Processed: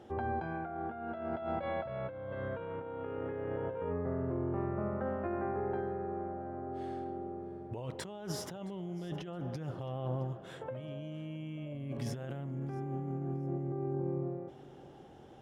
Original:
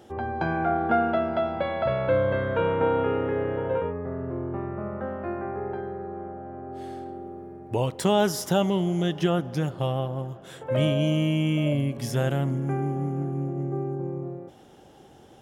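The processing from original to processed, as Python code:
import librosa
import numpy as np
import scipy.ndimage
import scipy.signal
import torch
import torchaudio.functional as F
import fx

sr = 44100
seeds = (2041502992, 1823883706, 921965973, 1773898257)

p1 = fx.lowpass(x, sr, hz=2500.0, slope=6)
p2 = fx.over_compress(p1, sr, threshold_db=-31.0, ratio=-1.0)
p3 = p2 + fx.echo_feedback(p2, sr, ms=668, feedback_pct=24, wet_db=-21, dry=0)
y = p3 * 10.0 ** (-7.0 / 20.0)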